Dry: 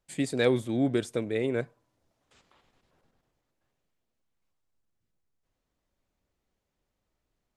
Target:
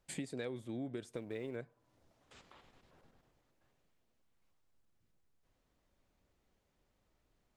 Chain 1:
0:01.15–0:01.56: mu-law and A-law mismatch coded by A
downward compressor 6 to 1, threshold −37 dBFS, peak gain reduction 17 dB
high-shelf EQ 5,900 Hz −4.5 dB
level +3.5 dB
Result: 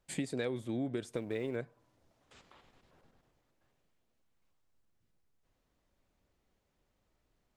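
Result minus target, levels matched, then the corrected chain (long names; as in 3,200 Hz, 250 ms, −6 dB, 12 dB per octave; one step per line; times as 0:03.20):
downward compressor: peak gain reduction −6 dB
0:01.15–0:01.56: mu-law and A-law mismatch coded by A
downward compressor 6 to 1, threshold −44 dBFS, peak gain reduction 23 dB
high-shelf EQ 5,900 Hz −4.5 dB
level +3.5 dB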